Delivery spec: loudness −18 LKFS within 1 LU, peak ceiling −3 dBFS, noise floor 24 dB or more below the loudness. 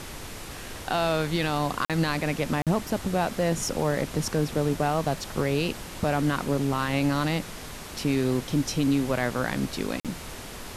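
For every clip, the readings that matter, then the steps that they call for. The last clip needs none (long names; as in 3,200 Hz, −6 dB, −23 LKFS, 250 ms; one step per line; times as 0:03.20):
number of dropouts 3; longest dropout 47 ms; background noise floor −40 dBFS; target noise floor −51 dBFS; integrated loudness −27.0 LKFS; sample peak −13.5 dBFS; target loudness −18.0 LKFS
→ repair the gap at 0:01.85/0:02.62/0:10.00, 47 ms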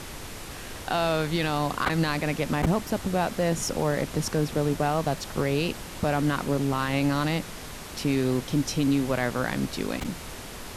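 number of dropouts 0; background noise floor −40 dBFS; target noise floor −51 dBFS
→ noise reduction from a noise print 11 dB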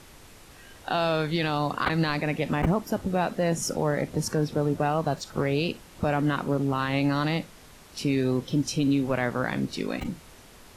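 background noise floor −50 dBFS; target noise floor −51 dBFS
→ noise reduction from a noise print 6 dB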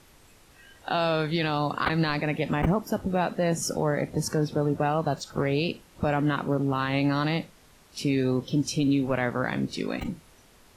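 background noise floor −56 dBFS; integrated loudness −27.0 LKFS; sample peak −11.0 dBFS; target loudness −18.0 LKFS
→ level +9 dB
brickwall limiter −3 dBFS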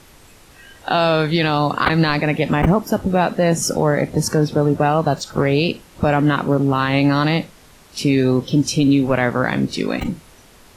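integrated loudness −18.0 LKFS; sample peak −3.0 dBFS; background noise floor −47 dBFS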